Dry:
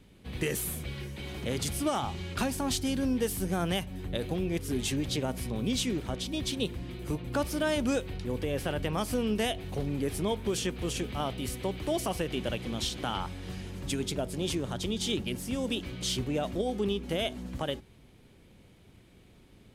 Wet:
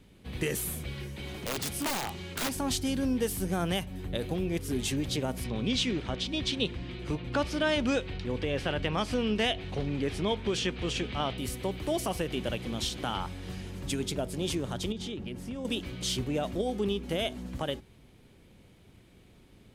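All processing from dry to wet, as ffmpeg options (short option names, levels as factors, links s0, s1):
-filter_complex "[0:a]asettb=1/sr,asplit=3[s0][s1][s2];[s0]atrim=end=1.364[s3];[s1]atrim=start=1.36:end=2.56,asetpts=PTS-STARTPTS,afade=t=in:d=0.004:c=qsin,afade=t=out:st=1.196:d=0.004:c=qsin,lowshelf=f=81:g=-11.5,aeval=exprs='(mod(18.8*val(0)+1,2)-1)/18.8':c=same[s4];[s2]atrim=start=2.556[s5];[s3][s4]acrossfade=d=0.004:c1=hsin:c2=qsin[s6];[s6][s5]acrossfade=d=0.004:c1=qsin:c2=hsin,asettb=1/sr,asplit=3[s7][s8][s9];[s7]atrim=end=5.444[s10];[s8]atrim=start=5.44:end=11.38,asetpts=PTS-STARTPTS,afade=t=in:d=0.004:c=qsin,afade=t=out:st=5.936:d=0.004:c=qsin,lowpass=3300,highshelf=f=2400:g=11.5[s11];[s9]atrim=start=11.376[s12];[s10][s11]acrossfade=d=0.004:c1=hsin:c2=qsin[s13];[s13][s12]acrossfade=d=0.004:c1=qsin:c2=hsin,asettb=1/sr,asplit=3[s14][s15][s16];[s14]atrim=end=14.924[s17];[s15]atrim=start=14.92:end=15.65,asetpts=PTS-STARTPTS,afade=t=in:d=0.004:c=qsin,afade=t=out:st=0.726:d=0.004:c=qsin,lowpass=f=2100:p=1,acompressor=threshold=0.0224:ratio=6:attack=3.2:release=140:knee=1:detection=peak[s18];[s16]atrim=start=15.646[s19];[s17][s18]acrossfade=d=0.004:c1=hsin:c2=qsin[s20];[s20][s19]acrossfade=d=0.004:c1=qsin:c2=hsin"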